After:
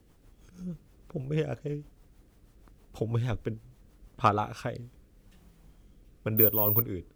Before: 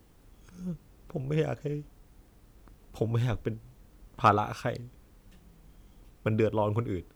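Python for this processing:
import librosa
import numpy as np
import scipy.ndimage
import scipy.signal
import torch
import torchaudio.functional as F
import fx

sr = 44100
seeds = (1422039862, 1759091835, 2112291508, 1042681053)

y = fx.rotary_switch(x, sr, hz=6.3, then_hz=0.9, switch_at_s=4.28)
y = fx.resample_bad(y, sr, factor=3, down='none', up='zero_stuff', at=(6.37, 6.82))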